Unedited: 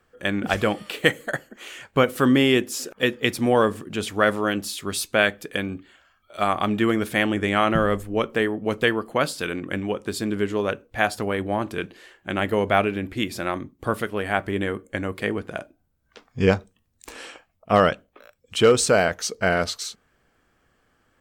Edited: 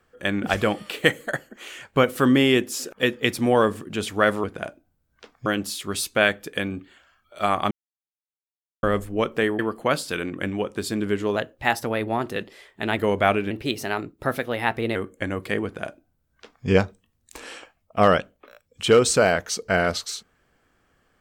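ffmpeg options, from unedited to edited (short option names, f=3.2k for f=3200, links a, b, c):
-filter_complex "[0:a]asplit=10[a][b][c][d][e][f][g][h][i][j];[a]atrim=end=4.442[k];[b]atrim=start=15.368:end=16.392[l];[c]atrim=start=4.438:end=6.69,asetpts=PTS-STARTPTS,afade=t=out:st=2.248:d=0.004:c=hsin[m];[d]atrim=start=6.69:end=7.81,asetpts=PTS-STARTPTS,volume=0[n];[e]atrim=start=7.81:end=8.572,asetpts=PTS-STARTPTS,afade=t=in:d=0.004:c=hsin[o];[f]atrim=start=8.888:end=10.664[p];[g]atrim=start=10.66:end=12.47,asetpts=PTS-STARTPTS,asetrate=49392,aresample=44100[q];[h]atrim=start=12.466:end=13.004[r];[i]atrim=start=13:end=14.68,asetpts=PTS-STARTPTS,asetrate=51156,aresample=44100[s];[j]atrim=start=14.676[t];[k][l]acrossfade=d=0.004:c1=hsin:c2=hsin[u];[m][n][o]concat=n=3:v=0:a=1[v];[u][v]acrossfade=d=0.004:c1=hsin:c2=hsin[w];[w][p]acrossfade=d=0.004:c1=hsin:c2=hsin[x];[x][q]acrossfade=d=0.004:c1=hsin:c2=hsin[y];[y][r]acrossfade=d=0.004:c1=hsin:c2=hsin[z];[z][s]acrossfade=d=0.004:c1=hsin:c2=hsin[aa];[aa][t]acrossfade=d=0.004:c1=hsin:c2=hsin"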